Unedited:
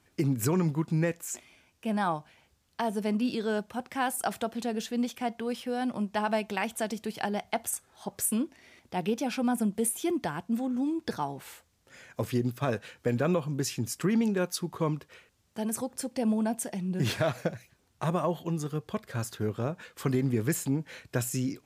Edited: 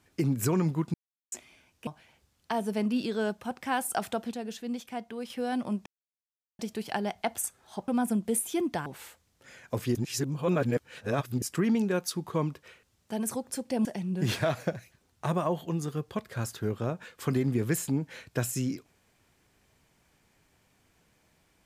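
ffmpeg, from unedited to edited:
ffmpeg -i in.wav -filter_complex "[0:a]asplit=13[link_01][link_02][link_03][link_04][link_05][link_06][link_07][link_08][link_09][link_10][link_11][link_12][link_13];[link_01]atrim=end=0.94,asetpts=PTS-STARTPTS,afade=type=out:start_time=0.936:duration=0.004:curve=hsin[link_14];[link_02]atrim=start=0.94:end=1.32,asetpts=PTS-STARTPTS,volume=0[link_15];[link_03]atrim=start=1.32:end=1.872,asetpts=PTS-STARTPTS,afade=type=in:duration=0.004:curve=hsin[link_16];[link_04]atrim=start=2.158:end=4.602[link_17];[link_05]atrim=start=4.598:end=5.592,asetpts=PTS-STARTPTS,volume=-5dB[link_18];[link_06]atrim=start=5.588:end=6.15,asetpts=PTS-STARTPTS,afade=type=out:start_time=0.558:duration=0.004:curve=hsin[link_19];[link_07]atrim=start=6.15:end=6.88,asetpts=PTS-STARTPTS,volume=0[link_20];[link_08]atrim=start=6.88:end=8.172,asetpts=PTS-STARTPTS,afade=type=in:duration=0.004:curve=hsin[link_21];[link_09]atrim=start=9.378:end=10.362[link_22];[link_10]atrim=start=11.318:end=12.412[link_23];[link_11]atrim=start=12.408:end=13.882,asetpts=PTS-STARTPTS,areverse[link_24];[link_12]atrim=start=13.878:end=16.312[link_25];[link_13]atrim=start=16.628[link_26];[link_14][link_15][link_16]concat=n=3:v=0:a=1[link_27];[link_27][link_17]acrossfade=duration=0.004:curve1=hsin:curve2=hsin[link_28];[link_28][link_18]acrossfade=duration=0.004:curve1=hsin:curve2=hsin[link_29];[link_19][link_20][link_21]concat=n=3:v=0:a=1[link_30];[link_29][link_30]acrossfade=duration=0.004:curve1=hsin:curve2=hsin[link_31];[link_31][link_22]acrossfade=duration=0.004:curve1=hsin:curve2=hsin[link_32];[link_32][link_23]acrossfade=duration=0.004:curve1=hsin:curve2=hsin[link_33];[link_33][link_24]acrossfade=duration=0.004:curve1=hsin:curve2=hsin[link_34];[link_34][link_25]acrossfade=duration=0.004:curve1=hsin:curve2=hsin[link_35];[link_35][link_26]acrossfade=duration=0.004:curve1=hsin:curve2=hsin" out.wav

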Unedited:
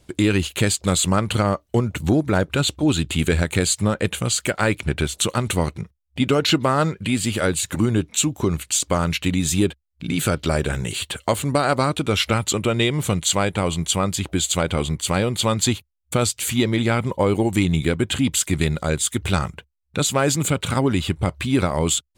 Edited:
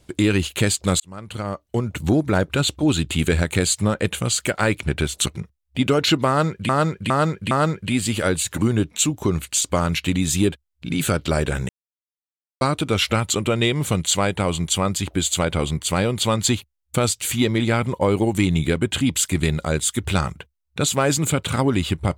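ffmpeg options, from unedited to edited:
ffmpeg -i in.wav -filter_complex "[0:a]asplit=8[link_01][link_02][link_03][link_04][link_05][link_06][link_07][link_08];[link_01]atrim=end=1,asetpts=PTS-STARTPTS,afade=type=out:start_time=0.996:duration=0.004:curve=hsin[link_09];[link_02]atrim=start=1:end=5.262,asetpts=PTS-STARTPTS,afade=type=in:duration=1.14[link_10];[link_03]atrim=start=5.668:end=7.102[link_11];[link_04]atrim=start=6.688:end=7.102[link_12];[link_05]atrim=start=6.688:end=7.102[link_13];[link_06]atrim=start=6.688:end=10.87,asetpts=PTS-STARTPTS,afade=type=out:start_time=4.178:duration=0.004:curve=hsin[link_14];[link_07]atrim=start=10.87:end=11.79,asetpts=PTS-STARTPTS,volume=0[link_15];[link_08]atrim=start=11.79,asetpts=PTS-STARTPTS,afade=type=in:duration=0.004:curve=hsin[link_16];[link_09][link_10]concat=n=2:v=0:a=1[link_17];[link_17][link_11]acrossfade=duration=0.004:curve1=hsin:curve2=hsin[link_18];[link_18][link_12]acrossfade=duration=0.004:curve1=hsin:curve2=hsin[link_19];[link_19][link_13]acrossfade=duration=0.004:curve1=hsin:curve2=hsin[link_20];[link_14][link_15][link_16]concat=n=3:v=0:a=1[link_21];[link_20][link_21]acrossfade=duration=0.004:curve1=hsin:curve2=hsin" out.wav

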